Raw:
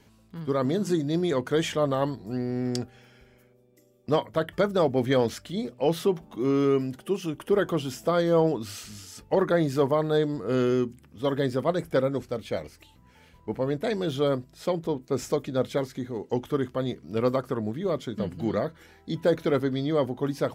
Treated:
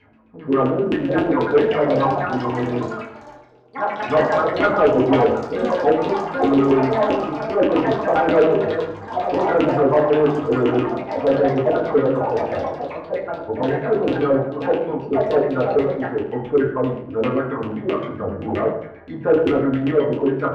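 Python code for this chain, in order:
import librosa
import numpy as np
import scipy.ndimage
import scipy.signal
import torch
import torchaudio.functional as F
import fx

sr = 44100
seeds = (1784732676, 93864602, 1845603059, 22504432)

y = fx.filter_lfo_lowpass(x, sr, shape='saw_down', hz=7.6, low_hz=300.0, high_hz=2800.0, q=6.2)
y = fx.echo_pitch(y, sr, ms=721, semitones=5, count=3, db_per_echo=-6.0)
y = fx.rev_fdn(y, sr, rt60_s=0.75, lf_ratio=1.2, hf_ratio=0.55, size_ms=66.0, drr_db=-4.0)
y = 10.0 ** (-3.5 / 20.0) * np.tanh(y / 10.0 ** (-3.5 / 20.0))
y = F.gain(torch.from_numpy(y), -4.0).numpy()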